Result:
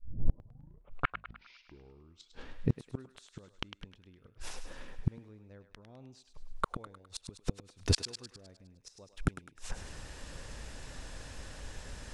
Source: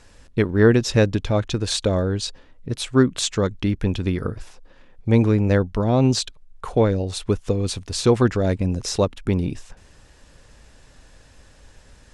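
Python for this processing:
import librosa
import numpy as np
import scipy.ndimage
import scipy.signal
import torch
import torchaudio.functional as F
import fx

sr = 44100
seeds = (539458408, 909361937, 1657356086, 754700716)

y = fx.tape_start_head(x, sr, length_s=2.57)
y = fx.gate_flip(y, sr, shuts_db=-18.0, range_db=-40)
y = fx.echo_thinned(y, sr, ms=103, feedback_pct=53, hz=750.0, wet_db=-8.5)
y = y * 10.0 ** (4.0 / 20.0)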